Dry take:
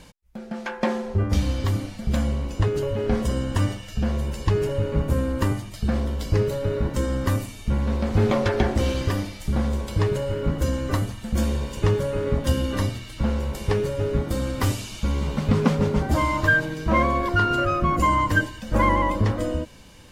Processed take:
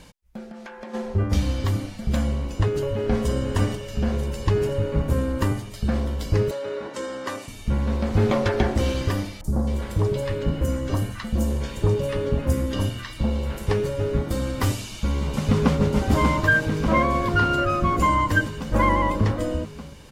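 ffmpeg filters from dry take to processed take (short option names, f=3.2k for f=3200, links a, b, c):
-filter_complex "[0:a]asplit=3[a][b][c];[a]afade=t=out:st=0.47:d=0.02[d];[b]acompressor=threshold=-37dB:ratio=4:attack=3.2:release=140:knee=1:detection=peak,afade=t=in:st=0.47:d=0.02,afade=t=out:st=0.93:d=0.02[e];[c]afade=t=in:st=0.93:d=0.02[f];[d][e][f]amix=inputs=3:normalize=0,asplit=2[g][h];[h]afade=t=in:st=2.65:d=0.01,afade=t=out:st=3.26:d=0.01,aecho=0:1:490|980|1470|1960|2450|2940|3430|3920|4410:0.421697|0.274103|0.178167|0.115808|0.0752755|0.048929|0.0318039|0.0206725|0.0134371[i];[g][i]amix=inputs=2:normalize=0,asettb=1/sr,asplit=3[j][k][l];[j]atrim=end=6.514[m];[k]atrim=start=6.51:end=7.48,asetpts=PTS-STARTPTS,afade=t=in:d=0.004:c=qsin,afade=t=out:st=0.966:d=0.004:c=qsin,highpass=430,lowpass=8k[n];[l]atrim=start=7.476[o];[m][n]acrossfade=d=0.004:c1=hsin:c2=qsin[p];[p][o]acrossfade=d=0.004:c1=qsin:c2=hsin,asettb=1/sr,asplit=3[q][r][s];[q]atrim=end=9.414[t];[r]atrim=start=9.41:end=13.67,asetpts=PTS-STARTPTS,afade=t=in:d=0.004:c=qsin,afade=t=out:st=4.256:d=0.004:c=qsin,acrossover=split=1200|5500[u][v][w];[w]adelay=30[x];[v]adelay=260[y];[u][y][x]amix=inputs=3:normalize=0,atrim=end_sample=187866[z];[s]atrim=start=13.666[aa];[t][z]acrossfade=d=0.004:c1=hsin:c2=qsin[ab];[ab][aa]acrossfade=d=0.004:c1=qsin:c2=hsin,asplit=2[ac][ad];[ad]afade=t=in:st=14.74:d=0.01,afade=t=out:st=15.8:d=0.01,aecho=0:1:590|1180|1770|2360|2950|3540|4130|4720|5310|5900|6490|7080:0.595662|0.446747|0.33506|0.251295|0.188471|0.141353|0.106015|0.0795113|0.0596335|0.0447251|0.0335438|0.0251579[ae];[ac][ae]amix=inputs=2:normalize=0"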